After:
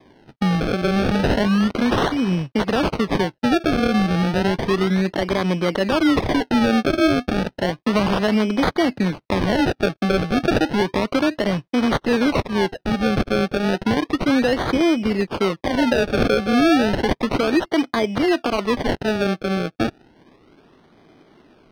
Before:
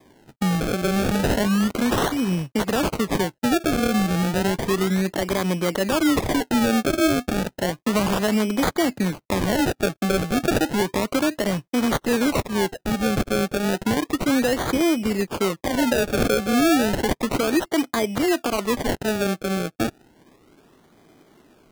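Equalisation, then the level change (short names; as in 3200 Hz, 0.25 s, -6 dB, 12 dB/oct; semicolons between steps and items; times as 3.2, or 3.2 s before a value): polynomial smoothing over 15 samples; +2.5 dB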